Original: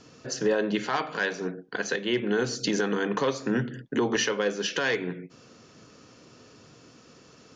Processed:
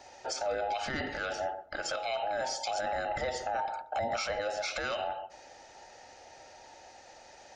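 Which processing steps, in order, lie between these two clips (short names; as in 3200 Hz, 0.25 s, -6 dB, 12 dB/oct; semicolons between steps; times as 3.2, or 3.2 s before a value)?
band inversion scrambler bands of 1000 Hz; darkening echo 0.132 s, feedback 47%, low-pass 1200 Hz, level -19 dB; limiter -24.5 dBFS, peak gain reduction 10 dB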